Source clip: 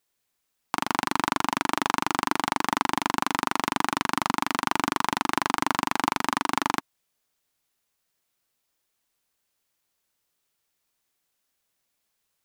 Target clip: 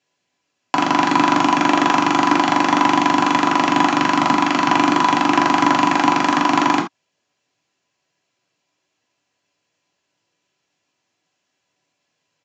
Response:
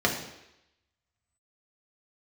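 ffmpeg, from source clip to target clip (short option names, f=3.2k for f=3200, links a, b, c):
-filter_complex "[1:a]atrim=start_sample=2205,afade=t=out:st=0.17:d=0.01,atrim=end_sample=7938,asetrate=61740,aresample=44100[a];[0:a][a]afir=irnorm=-1:irlink=0,aresample=16000,aresample=44100,volume=-1.5dB"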